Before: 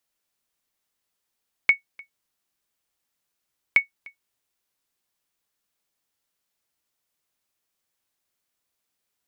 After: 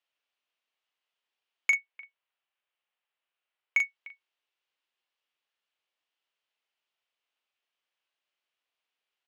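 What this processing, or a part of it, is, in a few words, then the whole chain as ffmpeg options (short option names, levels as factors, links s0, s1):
intercom: -filter_complex "[0:a]highpass=470,lowpass=3600,equalizer=f=2900:t=o:w=0.58:g=7.5,asoftclip=type=tanh:threshold=0.266,asplit=2[s0][s1];[s1]adelay=40,volume=0.473[s2];[s0][s2]amix=inputs=2:normalize=0,asettb=1/sr,asplit=3[s3][s4][s5];[s3]atrim=end=1.754[s6];[s4]atrim=start=1.75:end=3.8,asetpts=PTS-STARTPTS,afade=t=in:d=0.004:c=qsin,afade=t=out:st=2.046:d=0.004:c=qsin,bass=f=250:g=-15,treble=f=4000:g=-11[s7];[s5]atrim=start=3.796[s8];[s6][s7]acrossfade=d=0.004:c1=hsin:c2=qsin[s9];[s9][s8]acrossfade=d=0.004:c1=qsin:c2=hsin,volume=0.631"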